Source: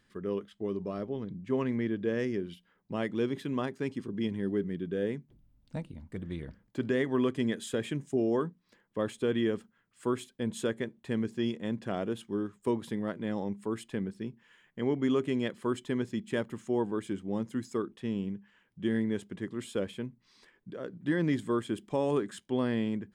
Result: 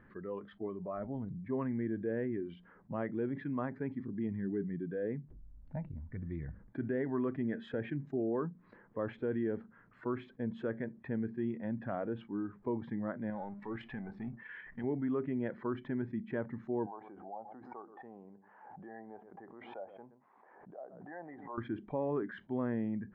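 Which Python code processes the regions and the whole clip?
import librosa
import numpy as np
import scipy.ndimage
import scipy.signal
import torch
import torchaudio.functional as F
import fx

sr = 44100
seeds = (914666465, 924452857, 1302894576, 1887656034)

y = fx.chain(x, sr, fx.high_shelf(hz=2400.0, db=7.5),
    fx.level_steps(step_db=10),
    fx.power_curve(exponent=0.7), at=(13.3, 14.84))
y = fx.chain(y, sr, fx.bandpass_q(hz=760.0, q=4.9),
    fx.echo_single(ms=122, db=-23.0),
    fx.pre_swell(db_per_s=76.0), at=(16.86, 21.58))
y = fx.noise_reduce_blind(y, sr, reduce_db=12)
y = scipy.signal.sosfilt(scipy.signal.butter(4, 1700.0, 'lowpass', fs=sr, output='sos'), y)
y = fx.env_flatten(y, sr, amount_pct=50)
y = F.gain(torch.from_numpy(y), -6.5).numpy()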